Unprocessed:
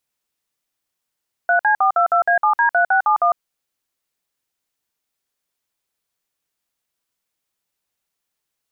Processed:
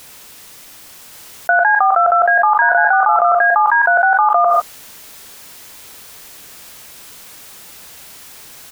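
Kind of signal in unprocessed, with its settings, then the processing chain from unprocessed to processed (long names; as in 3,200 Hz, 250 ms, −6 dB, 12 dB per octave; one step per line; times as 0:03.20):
touch tones "3C422A7D3671", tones 103 ms, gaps 54 ms, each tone −15 dBFS
on a send: single-tap delay 1,126 ms −4.5 dB
on the sum: reverb whose tail is shaped and stops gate 180 ms falling, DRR 12 dB
envelope flattener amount 100%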